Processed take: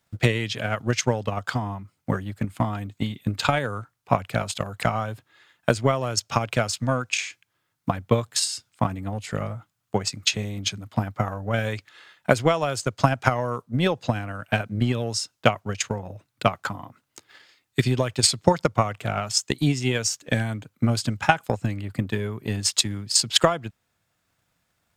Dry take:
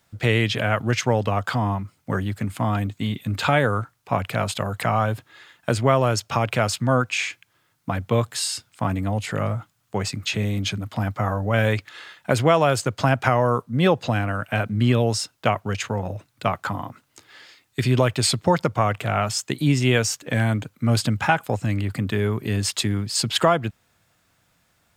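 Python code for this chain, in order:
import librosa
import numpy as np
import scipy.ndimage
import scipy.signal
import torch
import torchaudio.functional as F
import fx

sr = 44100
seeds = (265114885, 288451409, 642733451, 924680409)

y = fx.dynamic_eq(x, sr, hz=6100.0, q=0.87, threshold_db=-42.0, ratio=4.0, max_db=7)
y = fx.transient(y, sr, attack_db=12, sustain_db=-1)
y = F.gain(torch.from_numpy(y), -8.0).numpy()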